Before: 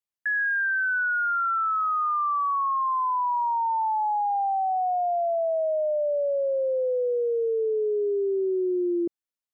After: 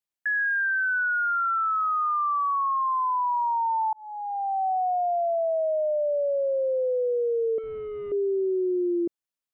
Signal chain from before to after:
0:03.93–0:04.66: fade in
0:07.58–0:08.12: linear delta modulator 16 kbit/s, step −48.5 dBFS

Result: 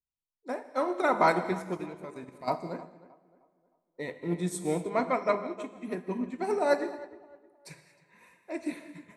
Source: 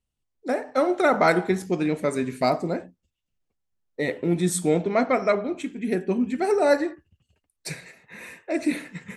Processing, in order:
parametric band 990 Hz +12 dB 0.3 octaves
0:01.77–0:02.48: output level in coarse steps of 14 dB
tape delay 310 ms, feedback 46%, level −11 dB, low-pass 2,000 Hz
reverb whose tail is shaped and stops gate 260 ms flat, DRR 8 dB
expander for the loud parts 1.5 to 1, over −40 dBFS
level −6 dB

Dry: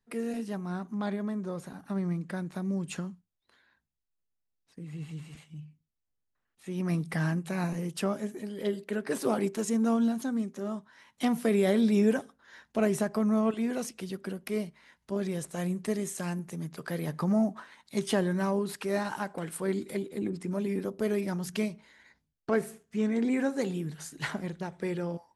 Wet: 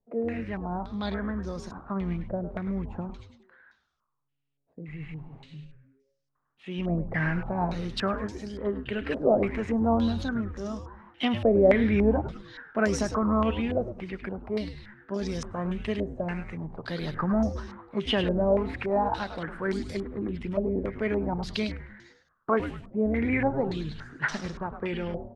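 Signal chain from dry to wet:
echo with shifted repeats 103 ms, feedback 45%, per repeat −140 Hz, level −8.5 dB
low-pass on a step sequencer 3.5 Hz 620–5,500 Hz

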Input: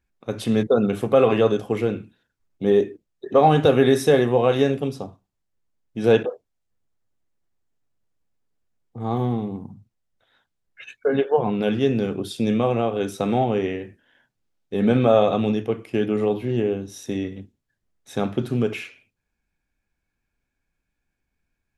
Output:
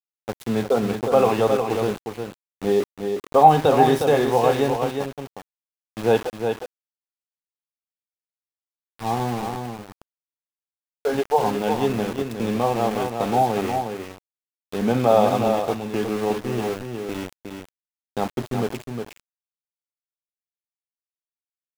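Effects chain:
parametric band 860 Hz +11 dB 0.64 octaves
centre clipping without the shift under −25 dBFS
on a send: single-tap delay 360 ms −6 dB
on the sum: level −3.5 dB

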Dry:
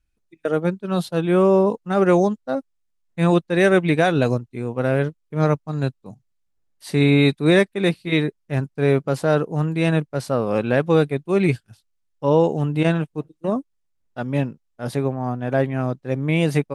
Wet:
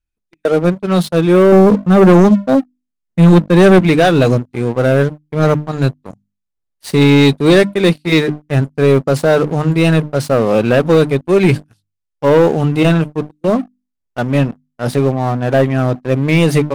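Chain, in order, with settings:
0:01.52–0:03.79: parametric band 210 Hz +9.5 dB 1.3 octaves
mains-hum notches 50/100/150/200/250/300 Hz
leveller curve on the samples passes 3
level −1 dB

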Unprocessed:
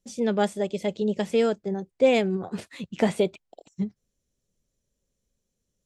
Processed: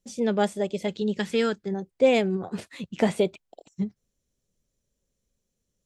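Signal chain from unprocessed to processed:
0:00.87–0:01.73: graphic EQ with 15 bands 630 Hz −9 dB, 1,600 Hz +7 dB, 4,000 Hz +5 dB

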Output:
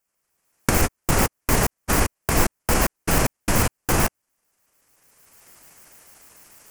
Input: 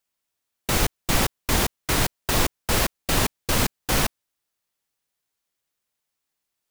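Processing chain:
pitch shifter gated in a rhythm −9 semitones, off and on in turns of 74 ms
camcorder AGC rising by 21 dB per second
parametric band 3,700 Hz −13.5 dB 0.63 octaves
level +3.5 dB

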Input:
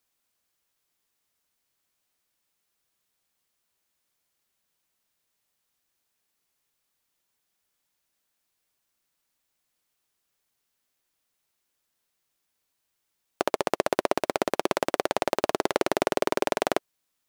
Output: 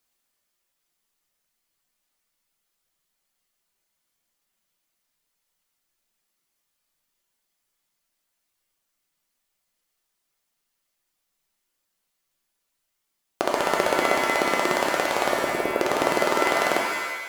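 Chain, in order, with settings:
reverb reduction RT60 1.9 s
0:15.30–0:15.80: Chebyshev band-stop filter 740–9,800 Hz, order 5
reverb with rising layers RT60 1 s, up +7 semitones, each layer −2 dB, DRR 1 dB
level +1 dB

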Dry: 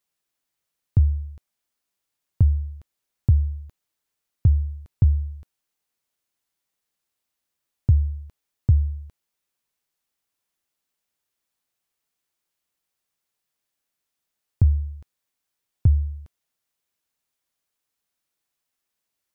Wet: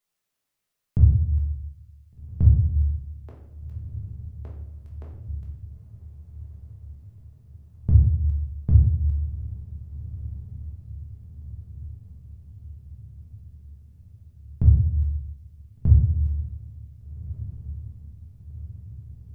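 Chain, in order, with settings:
0:02.62–0:05.29: Bessel high-pass filter 530 Hz, order 8
feedback delay with all-pass diffusion 1,571 ms, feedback 63%, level −15.5 dB
convolution reverb RT60 0.80 s, pre-delay 5 ms, DRR −3 dB
level −3.5 dB

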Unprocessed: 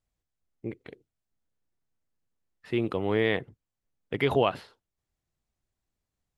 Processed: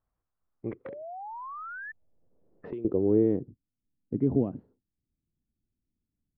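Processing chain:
low-pass filter sweep 1,200 Hz → 260 Hz, 0:00.85–0:03.67
0:00.85–0:01.92: sound drawn into the spectrogram rise 520–1,800 Hz −40 dBFS
0:00.72–0:02.85: multiband upward and downward compressor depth 100%

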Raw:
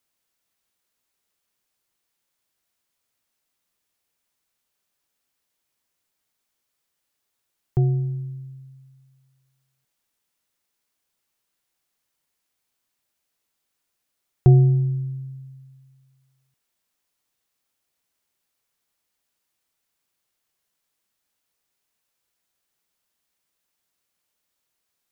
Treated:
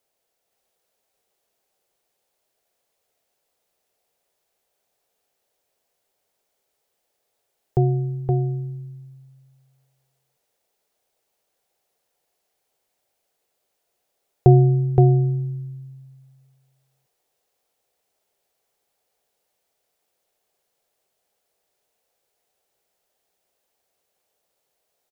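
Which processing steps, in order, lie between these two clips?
flat-topped bell 560 Hz +11 dB 1.3 octaves
single-tap delay 520 ms −3 dB

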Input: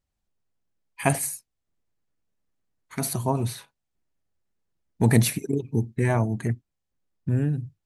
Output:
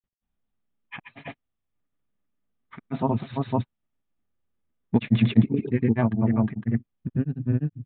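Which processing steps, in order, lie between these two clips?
downsampling to 8,000 Hz
hollow resonant body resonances 230/1,200 Hz, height 8 dB
granular cloud, grains 20 per second, spray 290 ms, pitch spread up and down by 0 semitones

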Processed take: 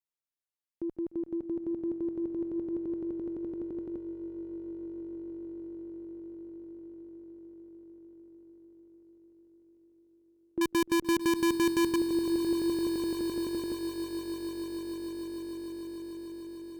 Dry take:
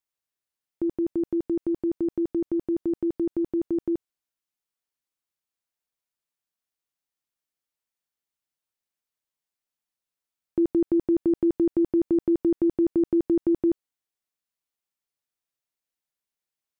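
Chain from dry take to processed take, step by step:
0:10.61–0:11.96: each half-wave held at its own peak
echo that builds up and dies away 149 ms, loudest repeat 8, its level −14 dB
harmonic generator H 7 −41 dB, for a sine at −11.5 dBFS
level −8.5 dB

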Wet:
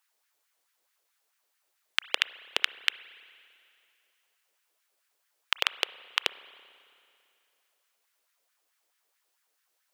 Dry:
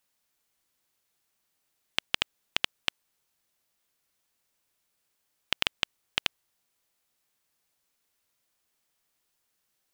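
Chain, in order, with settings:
auto-filter high-pass sine 4.6 Hz 410–1,700 Hz
spring reverb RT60 2.5 s, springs 30/55 ms, chirp 50 ms, DRR 16.5 dB

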